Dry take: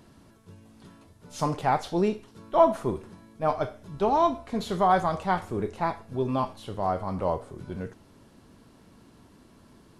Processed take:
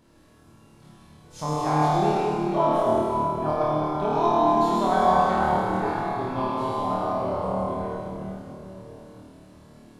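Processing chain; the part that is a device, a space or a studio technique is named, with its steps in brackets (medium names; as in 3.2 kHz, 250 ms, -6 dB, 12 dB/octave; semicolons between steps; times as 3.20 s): tunnel (flutter echo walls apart 4.5 m, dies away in 0.81 s; reverberation RT60 3.6 s, pre-delay 71 ms, DRR -4 dB); trim -6.5 dB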